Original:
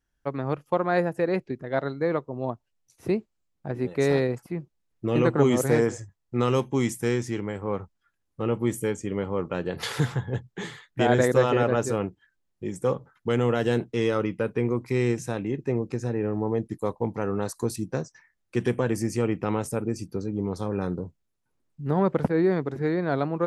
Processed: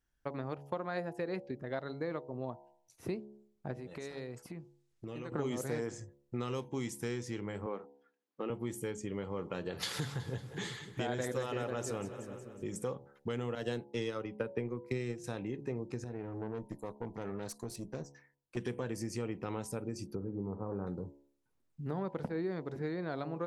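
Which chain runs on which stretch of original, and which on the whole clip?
3.73–5.32 s: treble shelf 3.4 kHz +9.5 dB + compression 4:1, threshold -38 dBFS + low-pass 8.7 kHz
7.66–8.50 s: high-pass 220 Hz 24 dB/octave + distance through air 95 m
9.13–12.84 s: treble shelf 5.9 kHz +6.5 dB + two-band feedback delay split 450 Hz, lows 272 ms, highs 183 ms, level -15 dB
13.55–15.24 s: transient shaper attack +7 dB, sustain -4 dB + three bands expanded up and down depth 100%
16.04–18.57 s: tremolo saw up 1.3 Hz, depth 55% + valve stage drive 26 dB, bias 0.55
20.15–20.87 s: inverse Chebyshev low-pass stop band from 4.4 kHz, stop band 60 dB + flutter echo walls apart 10.5 m, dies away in 0.31 s
whole clip: de-hum 70.27 Hz, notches 14; dynamic bell 4.4 kHz, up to +5 dB, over -51 dBFS, Q 1.2; compression 3:1, threshold -33 dBFS; trim -3.5 dB

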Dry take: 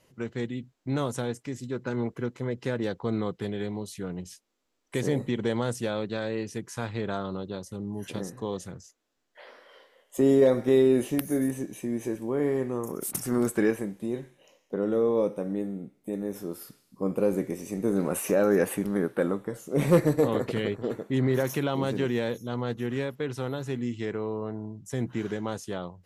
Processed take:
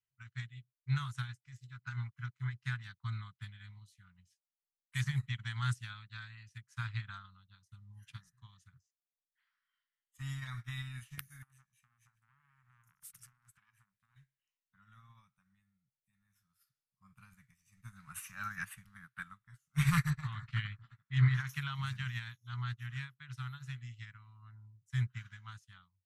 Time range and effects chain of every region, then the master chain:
11.42–14.16 s: compression 12:1, threshold -29 dBFS + transformer saturation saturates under 1.7 kHz
20.10–21.49 s: distance through air 89 m + doubling 19 ms -14 dB
whole clip: Chebyshev band-stop 130–1300 Hz, order 3; treble shelf 6.7 kHz -8 dB; upward expansion 2.5:1, over -53 dBFS; trim +7.5 dB

